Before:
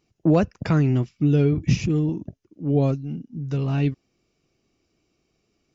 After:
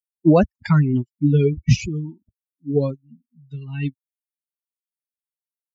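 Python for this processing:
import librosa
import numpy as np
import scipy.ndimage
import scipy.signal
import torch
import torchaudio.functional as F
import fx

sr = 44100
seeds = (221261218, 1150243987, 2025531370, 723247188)

y = fx.bin_expand(x, sr, power=3.0)
y = y * librosa.db_to_amplitude(8.0)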